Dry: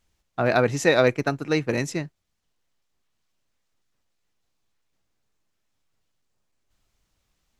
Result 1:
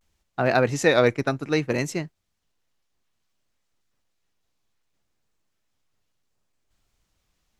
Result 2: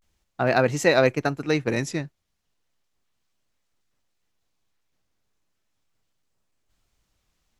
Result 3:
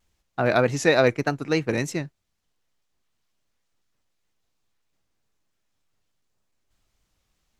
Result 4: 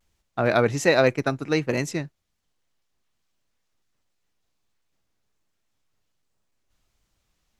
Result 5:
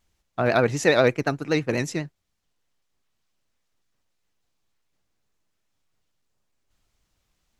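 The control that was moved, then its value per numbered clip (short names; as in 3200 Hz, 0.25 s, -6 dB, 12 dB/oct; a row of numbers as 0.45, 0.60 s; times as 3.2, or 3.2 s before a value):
vibrato, rate: 0.63, 0.35, 3.3, 1.3, 12 Hz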